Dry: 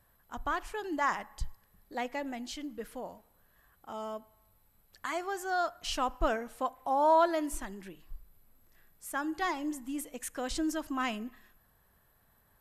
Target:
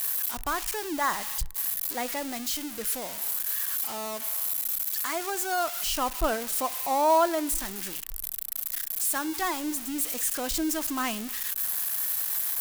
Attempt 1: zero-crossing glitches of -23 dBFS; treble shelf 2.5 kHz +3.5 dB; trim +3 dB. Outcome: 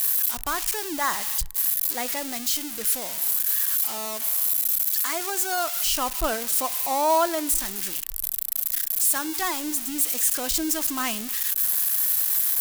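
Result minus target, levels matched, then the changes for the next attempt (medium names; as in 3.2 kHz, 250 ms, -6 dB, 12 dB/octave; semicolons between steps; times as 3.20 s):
2 kHz band -3.0 dB
change: treble shelf 2.5 kHz -3 dB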